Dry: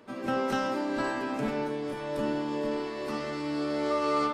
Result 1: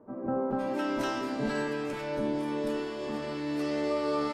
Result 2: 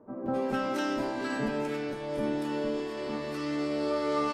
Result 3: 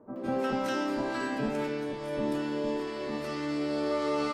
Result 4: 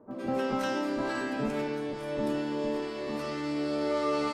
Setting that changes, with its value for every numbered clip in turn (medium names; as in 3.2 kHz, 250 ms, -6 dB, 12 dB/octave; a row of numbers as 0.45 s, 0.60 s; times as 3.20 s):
bands offset in time, time: 510 ms, 260 ms, 160 ms, 110 ms